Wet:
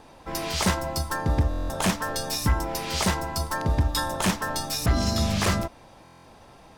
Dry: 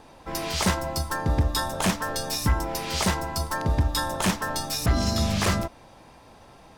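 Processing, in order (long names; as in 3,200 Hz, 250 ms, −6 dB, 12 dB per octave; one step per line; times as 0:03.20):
buffer that repeats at 0:01.49/0:06.04, samples 1,024, times 8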